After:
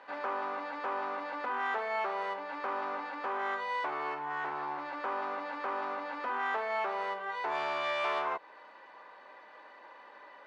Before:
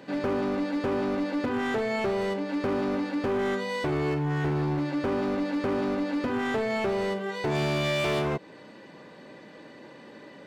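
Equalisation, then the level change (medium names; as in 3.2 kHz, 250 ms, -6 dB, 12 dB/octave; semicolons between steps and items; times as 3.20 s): resonant high-pass 990 Hz, resonance Q 1.9; distance through air 95 m; treble shelf 2.3 kHz -10 dB; 0.0 dB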